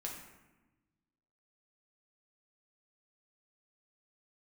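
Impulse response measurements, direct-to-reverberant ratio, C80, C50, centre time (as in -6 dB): -2.0 dB, 6.5 dB, 4.0 dB, 42 ms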